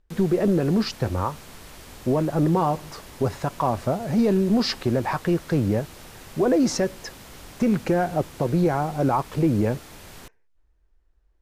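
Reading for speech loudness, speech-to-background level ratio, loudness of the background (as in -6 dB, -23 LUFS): -23.5 LUFS, 20.0 dB, -43.5 LUFS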